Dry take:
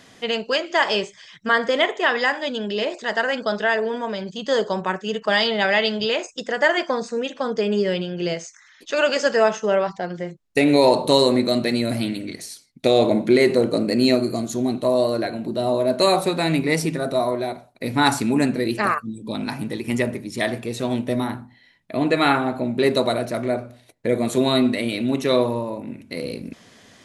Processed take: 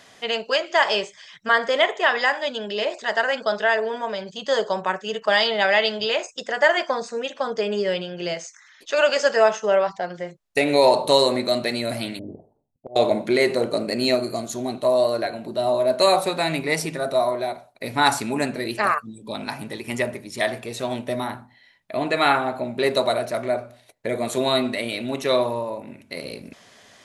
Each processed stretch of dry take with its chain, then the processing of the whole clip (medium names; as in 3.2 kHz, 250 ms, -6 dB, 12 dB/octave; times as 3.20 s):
12.19–12.96 s: elliptic low-pass 840 Hz, stop band 60 dB + bass shelf 160 Hz +9.5 dB + slow attack 567 ms
whole clip: resonant low shelf 400 Hz -6 dB, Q 1.5; band-stop 490 Hz, Q 12